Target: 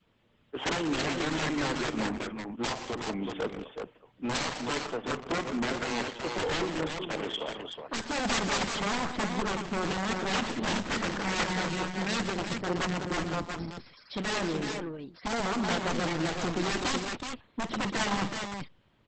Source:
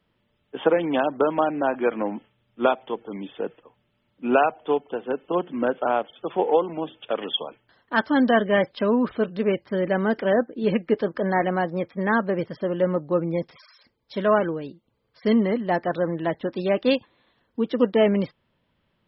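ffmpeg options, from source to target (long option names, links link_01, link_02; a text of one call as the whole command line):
ffmpeg -i in.wav -filter_complex "[0:a]aeval=exprs='(mod(7.5*val(0)+1,2)-1)/7.5':channel_layout=same,adynamicequalizer=threshold=0.01:dfrequency=600:dqfactor=1.7:tfrequency=600:tqfactor=1.7:attack=5:release=100:ratio=0.375:range=3:mode=cutabove:tftype=bell,asplit=3[link_01][link_02][link_03];[link_01]afade=type=out:start_time=10.63:duration=0.02[link_04];[link_02]asplit=2[link_05][link_06];[link_06]adelay=26,volume=-5.5dB[link_07];[link_05][link_07]amix=inputs=2:normalize=0,afade=type=in:start_time=10.63:duration=0.02,afade=type=out:start_time=12:duration=0.02[link_08];[link_03]afade=type=in:start_time=12:duration=0.02[link_09];[link_04][link_08][link_09]amix=inputs=3:normalize=0,asoftclip=type=tanh:threshold=-28.5dB,asplit=3[link_10][link_11][link_12];[link_10]afade=type=out:start_time=15.88:duration=0.02[link_13];[link_11]aeval=exprs='0.0376*(cos(1*acos(clip(val(0)/0.0376,-1,1)))-cos(1*PI/2))+0.015*(cos(8*acos(clip(val(0)/0.0376,-1,1)))-cos(8*PI/2))':channel_layout=same,afade=type=in:start_time=15.88:duration=0.02,afade=type=out:start_time=16.9:duration=0.02[link_14];[link_12]afade=type=in:start_time=16.9:duration=0.02[link_15];[link_13][link_14][link_15]amix=inputs=3:normalize=0,aecho=1:1:50|51|121|189|374:0.168|0.158|0.266|0.237|0.562,volume=1.5dB" -ar 48000 -c:a libopus -b:a 10k out.opus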